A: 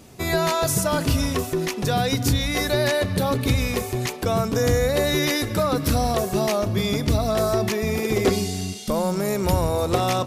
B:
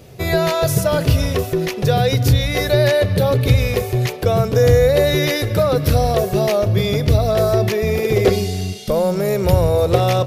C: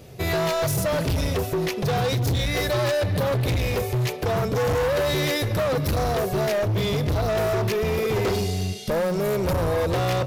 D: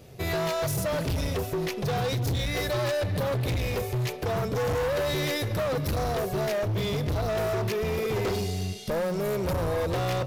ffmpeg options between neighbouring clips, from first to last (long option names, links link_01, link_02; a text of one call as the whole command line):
ffmpeg -i in.wav -af "equalizer=frequency=125:width_type=o:width=1:gain=7,equalizer=frequency=250:width_type=o:width=1:gain=-9,equalizer=frequency=500:width_type=o:width=1:gain=7,equalizer=frequency=1000:width_type=o:width=1:gain=-6,equalizer=frequency=8000:width_type=o:width=1:gain=-8,volume=4.5dB" out.wav
ffmpeg -i in.wav -af "asoftclip=type=hard:threshold=-18dB,volume=-2.5dB" out.wav
ffmpeg -i in.wav -af "aeval=exprs='0.1*(cos(1*acos(clip(val(0)/0.1,-1,1)))-cos(1*PI/2))+0.00282*(cos(8*acos(clip(val(0)/0.1,-1,1)))-cos(8*PI/2))':channel_layout=same,volume=-4.5dB" out.wav